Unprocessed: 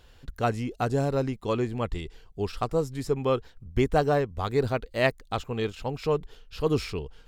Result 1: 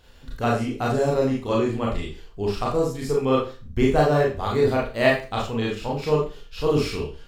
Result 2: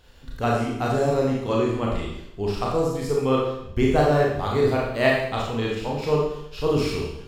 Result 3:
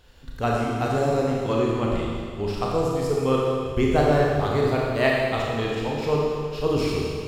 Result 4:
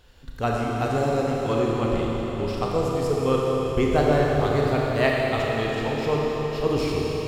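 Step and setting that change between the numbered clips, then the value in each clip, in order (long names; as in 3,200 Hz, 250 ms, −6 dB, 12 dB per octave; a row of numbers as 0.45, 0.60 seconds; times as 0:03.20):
four-comb reverb, RT60: 0.34, 0.77, 2, 4.5 seconds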